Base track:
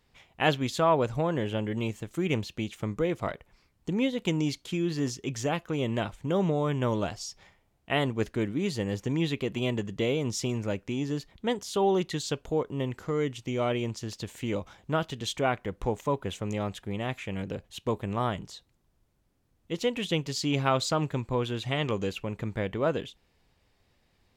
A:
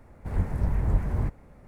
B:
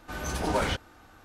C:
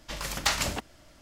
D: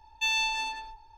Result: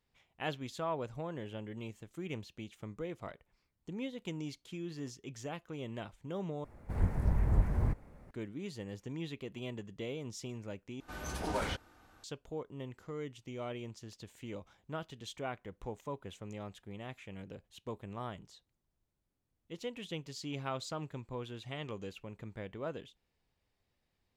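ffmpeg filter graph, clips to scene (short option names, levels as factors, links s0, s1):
-filter_complex "[0:a]volume=0.224,asplit=3[s0][s1][s2];[s0]atrim=end=6.644[s3];[1:a]atrim=end=1.67,asetpts=PTS-STARTPTS,volume=0.631[s4];[s1]atrim=start=8.306:end=11.004[s5];[2:a]atrim=end=1.24,asetpts=PTS-STARTPTS,volume=0.398[s6];[s2]atrim=start=12.236[s7];[s3][s4]acrossfade=d=0.004:c1=hsin:c2=hsin[s8];[s8][s5]acrossfade=d=0.004:c1=hsin:c2=hsin[s9];[s9][s6]acrossfade=d=0.004:c1=hsin:c2=hsin[s10];[s10][s7]acrossfade=d=0.004:c1=hsin:c2=hsin"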